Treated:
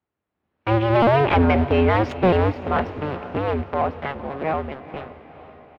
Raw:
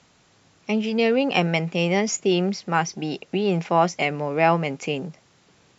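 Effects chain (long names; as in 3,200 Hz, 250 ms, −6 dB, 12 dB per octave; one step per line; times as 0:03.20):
sub-harmonics by changed cycles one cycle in 2, inverted
source passing by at 0:01.50, 12 m/s, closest 5 metres
high-pass filter 70 Hz 12 dB per octave
high-shelf EQ 3,700 Hz −7.5 dB
automatic gain control gain up to 8.5 dB
leveller curve on the samples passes 3
high-frequency loss of the air 440 metres
feedback delay with all-pass diffusion 464 ms, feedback 52%, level −14 dB
pitch-shifted copies added −7 semitones −16 dB
level −6 dB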